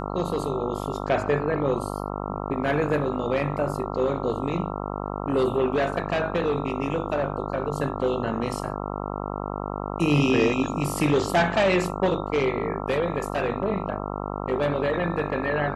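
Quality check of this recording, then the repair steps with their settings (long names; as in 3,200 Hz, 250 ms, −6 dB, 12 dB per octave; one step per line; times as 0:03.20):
mains buzz 50 Hz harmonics 27 −31 dBFS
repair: hum removal 50 Hz, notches 27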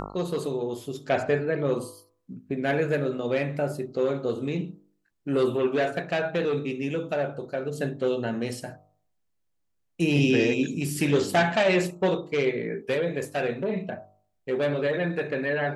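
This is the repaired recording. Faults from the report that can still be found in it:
none of them is left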